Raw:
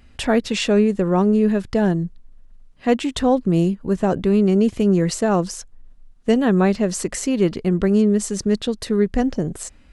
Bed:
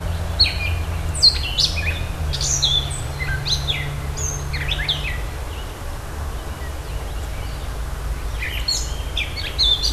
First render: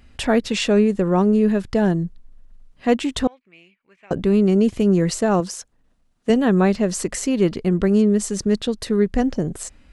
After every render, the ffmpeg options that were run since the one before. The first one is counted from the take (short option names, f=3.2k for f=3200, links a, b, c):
-filter_complex "[0:a]asettb=1/sr,asplit=3[a][b][c];[a]atrim=end=3.274[d];[b]atrim=start=3.27:end=4.11,asetpts=PTS-STARTPTS,afade=t=in:d=0.004:c=qsin,afade=t=out:st=0.836:d=0.004:c=qsin,bandpass=f=2.3k:t=q:w=9[e];[c]atrim=start=4.106[f];[d][e]acrossfade=d=0.004:c1=hsin:c2=qsin[g];[g][f]acrossfade=d=0.004:c1=qsin:c2=hsin,asettb=1/sr,asplit=3[h][i][j];[h]atrim=end=5.404[k];[i]atrim=start=5.4:end=6.3,asetpts=PTS-STARTPTS,afade=t=in:d=0.004:c=qsin,afade=t=out:st=0.896:d=0.004:c=qsin,highpass=f=170:p=1[l];[j]atrim=start=6.296[m];[k][l]acrossfade=d=0.004:c1=hsin:c2=qsin[n];[n][m]acrossfade=d=0.004:c1=qsin:c2=hsin"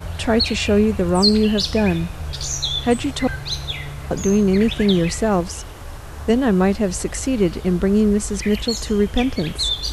-filter_complex "[1:a]volume=-5dB[a];[0:a][a]amix=inputs=2:normalize=0"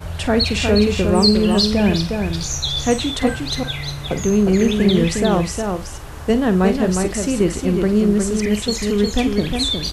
-filter_complex "[0:a]asplit=2[a][b];[b]adelay=48,volume=-12dB[c];[a][c]amix=inputs=2:normalize=0,aecho=1:1:359:0.562"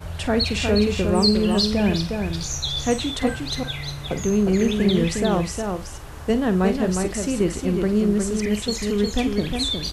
-af "volume=-4dB"